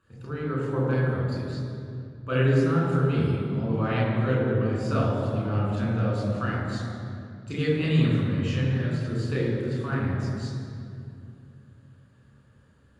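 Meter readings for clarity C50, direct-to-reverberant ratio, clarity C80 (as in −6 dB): −1.0 dB, −6.0 dB, 1.0 dB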